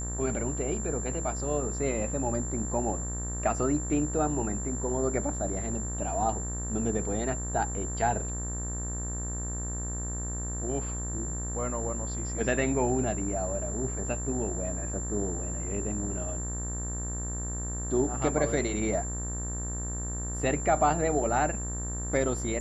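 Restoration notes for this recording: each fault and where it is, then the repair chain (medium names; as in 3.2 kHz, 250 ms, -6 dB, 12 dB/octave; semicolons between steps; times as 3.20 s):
buzz 60 Hz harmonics 32 -35 dBFS
whine 7.3 kHz -36 dBFS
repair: band-stop 7.3 kHz, Q 30; de-hum 60 Hz, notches 32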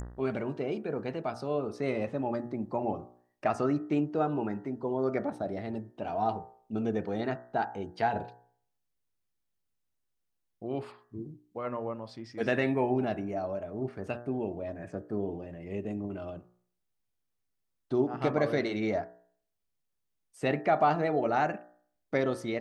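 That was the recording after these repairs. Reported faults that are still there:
nothing left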